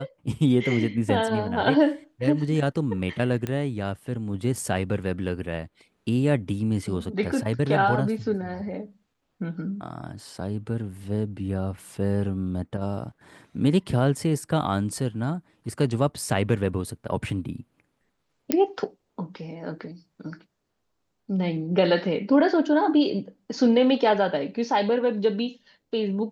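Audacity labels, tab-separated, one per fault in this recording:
3.470000	3.470000	pop -16 dBFS
18.520000	18.520000	pop -5 dBFS

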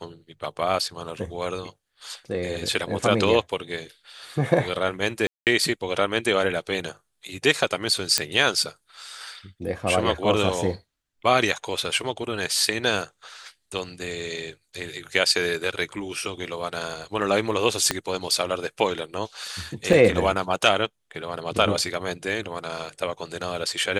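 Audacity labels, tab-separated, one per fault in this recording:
5.270000	5.470000	gap 0.198 s
8.180000	8.180000	pop -2 dBFS
17.910000	17.910000	pop -6 dBFS
19.930000	19.930000	gap 2.5 ms

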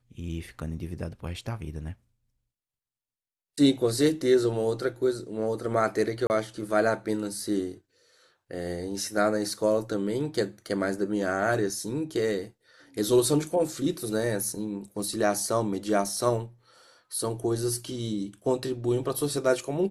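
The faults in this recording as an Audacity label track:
6.270000	6.300000	gap 29 ms

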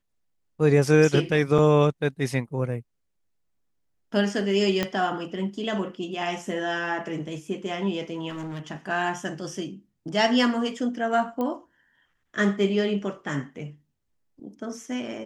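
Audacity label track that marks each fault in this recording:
1.580000	1.590000	gap 5.7 ms
4.830000	4.830000	pop -10 dBFS
8.290000	8.710000	clipped -31 dBFS
11.410000	11.410000	pop -18 dBFS

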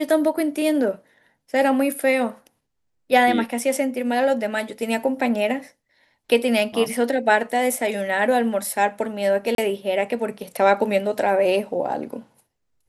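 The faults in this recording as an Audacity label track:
9.550000	9.580000	gap 32 ms

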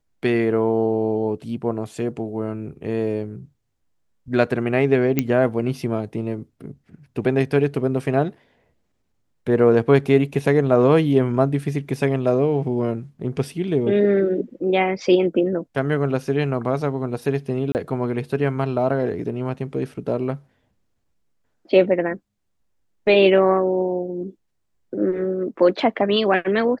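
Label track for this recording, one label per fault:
5.190000	5.190000	pop -5 dBFS
17.720000	17.750000	gap 29 ms

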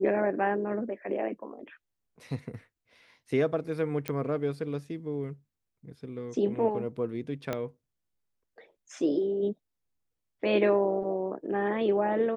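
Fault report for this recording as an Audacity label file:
4.080000	4.080000	pop -16 dBFS
7.530000	7.530000	pop -17 dBFS

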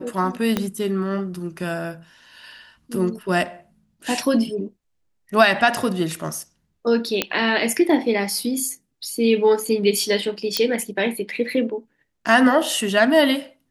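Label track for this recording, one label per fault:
0.570000	0.570000	pop -7 dBFS
7.220000	7.220000	pop -3 dBFS
10.570000	10.570000	pop -4 dBFS

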